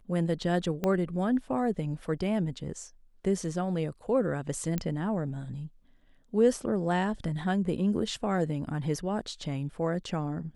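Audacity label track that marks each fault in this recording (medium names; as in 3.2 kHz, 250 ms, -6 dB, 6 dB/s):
0.840000	0.840000	pop -16 dBFS
4.780000	4.780000	pop -16 dBFS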